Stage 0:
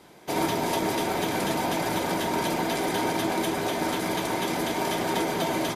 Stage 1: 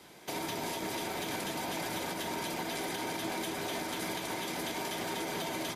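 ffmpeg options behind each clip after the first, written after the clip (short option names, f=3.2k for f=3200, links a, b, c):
-filter_complex "[0:a]acrossover=split=130|1700[a][b][c];[c]acontrast=35[d];[a][b][d]amix=inputs=3:normalize=0,alimiter=limit=-22.5dB:level=0:latency=1:release=207,volume=-4dB"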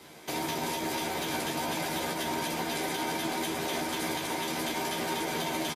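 -filter_complex "[0:a]asplit=2[a][b];[b]adelay=13,volume=-4dB[c];[a][c]amix=inputs=2:normalize=0,volume=2.5dB"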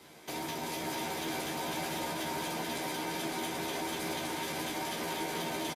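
-filter_complex "[0:a]asplit=2[a][b];[b]asoftclip=type=tanh:threshold=-30.5dB,volume=-3.5dB[c];[a][c]amix=inputs=2:normalize=0,aecho=1:1:440:0.631,volume=-8.5dB"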